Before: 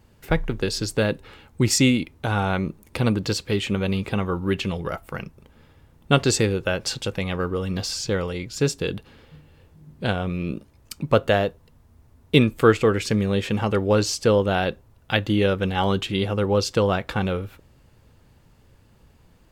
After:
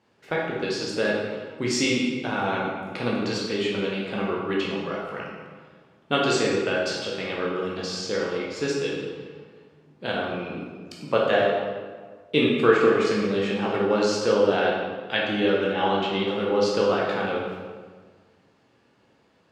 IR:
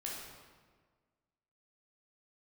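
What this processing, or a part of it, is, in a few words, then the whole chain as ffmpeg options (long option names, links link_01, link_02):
supermarket ceiling speaker: -filter_complex "[0:a]highpass=250,lowpass=5400[link_01];[1:a]atrim=start_sample=2205[link_02];[link_01][link_02]afir=irnorm=-1:irlink=0,asettb=1/sr,asplit=3[link_03][link_04][link_05];[link_03]atrim=end=15.734[link_06];[link_04]atrim=start=15.73:end=16.28,asetpts=PTS-STARTPTS,afade=type=in:duration=0.004:curve=qsin,afade=type=out:start_time=0.546:duration=0.004:curve=qsin,lowpass=5300[link_07];[link_05]atrim=start=16.276[link_08];[link_06][link_07]acrossfade=duration=0.004:curve1=hsin:curve2=qsin[link_09];[link_09][link_08]acrossfade=duration=0.004:curve1=qsin:curve2=hsin"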